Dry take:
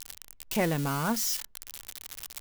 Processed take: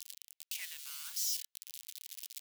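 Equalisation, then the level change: ladder high-pass 2300 Hz, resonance 20%; 0.0 dB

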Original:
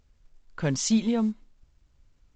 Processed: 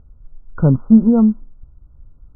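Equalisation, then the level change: brick-wall FIR low-pass 1500 Hz; air absorption 500 m; low shelf 220 Hz +10 dB; +9.0 dB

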